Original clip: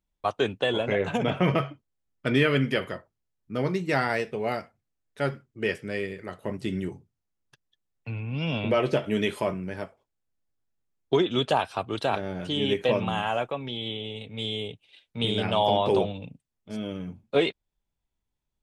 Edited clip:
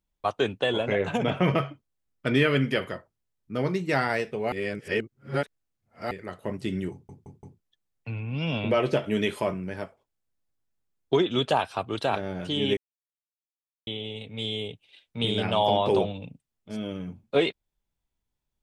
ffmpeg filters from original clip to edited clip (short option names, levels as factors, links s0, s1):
-filter_complex "[0:a]asplit=9[s0][s1][s2][s3][s4][s5][s6][s7][s8];[s0]atrim=end=4.522[s9];[s1]atrim=start=4.518:end=6.112,asetpts=PTS-STARTPTS,areverse[s10];[s2]atrim=start=6.108:end=7.092[s11];[s3]atrim=start=6.918:end=7.092[s12];[s4]atrim=start=6.918:end=7.092[s13];[s5]atrim=start=6.918:end=7.092[s14];[s6]atrim=start=7.598:end=12.77,asetpts=PTS-STARTPTS,afade=t=out:st=5.168:d=0.004:c=hsin[s15];[s7]atrim=start=12.77:end=13.87,asetpts=PTS-STARTPTS,volume=0[s16];[s8]atrim=start=13.87,asetpts=PTS-STARTPTS,afade=t=in:d=0.004:c=hsin[s17];[s9][s10]acrossfade=d=0.004:c1=hsin:c2=hsin[s18];[s18][s11]acrossfade=d=0.004:c1=hsin:c2=hsin[s19];[s19][s12]acrossfade=d=0.004:c1=hsin:c2=hsin[s20];[s20][s13]acrossfade=d=0.004:c1=hsin:c2=hsin[s21];[s21][s14]acrossfade=d=0.004:c1=hsin:c2=hsin[s22];[s15][s16][s17]concat=n=3:v=0:a=1[s23];[s22][s23]acrossfade=d=0.004:c1=hsin:c2=hsin"